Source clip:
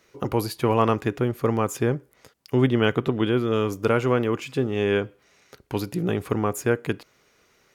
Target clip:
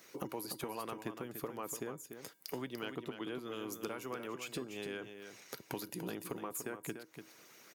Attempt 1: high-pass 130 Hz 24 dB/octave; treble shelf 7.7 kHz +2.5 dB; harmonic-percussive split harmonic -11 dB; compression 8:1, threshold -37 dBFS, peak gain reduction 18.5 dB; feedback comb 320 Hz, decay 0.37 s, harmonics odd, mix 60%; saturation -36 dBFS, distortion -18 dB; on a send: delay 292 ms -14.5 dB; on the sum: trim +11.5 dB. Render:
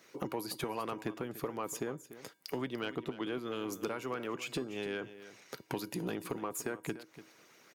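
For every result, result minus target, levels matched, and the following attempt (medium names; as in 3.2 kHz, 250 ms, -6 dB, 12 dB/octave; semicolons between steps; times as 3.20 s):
compression: peak gain reduction -5.5 dB; echo-to-direct -6 dB; 8 kHz band -3.0 dB
high-pass 130 Hz 24 dB/octave; treble shelf 7.7 kHz +2.5 dB; harmonic-percussive split harmonic -11 dB; compression 8:1, threshold -43 dBFS, peak gain reduction 23.5 dB; feedback comb 320 Hz, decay 0.37 s, harmonics odd, mix 60%; saturation -36 dBFS, distortion -25 dB; on a send: delay 292 ms -14.5 dB; on the sum: trim +11.5 dB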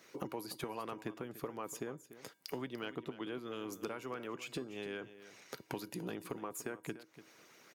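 echo-to-direct -6 dB; 8 kHz band -3.0 dB
high-pass 130 Hz 24 dB/octave; treble shelf 7.7 kHz +2.5 dB; harmonic-percussive split harmonic -11 dB; compression 8:1, threshold -43 dBFS, peak gain reduction 23.5 dB; feedback comb 320 Hz, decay 0.37 s, harmonics odd, mix 60%; saturation -36 dBFS, distortion -25 dB; on a send: delay 292 ms -8.5 dB; on the sum: trim +11.5 dB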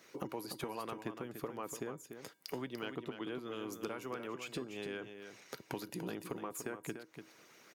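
8 kHz band -3.0 dB
high-pass 130 Hz 24 dB/octave; treble shelf 7.7 kHz +12.5 dB; harmonic-percussive split harmonic -11 dB; compression 8:1, threshold -43 dBFS, peak gain reduction 23.5 dB; feedback comb 320 Hz, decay 0.37 s, harmonics odd, mix 60%; saturation -36 dBFS, distortion -24 dB; on a send: delay 292 ms -8.5 dB; on the sum: trim +11.5 dB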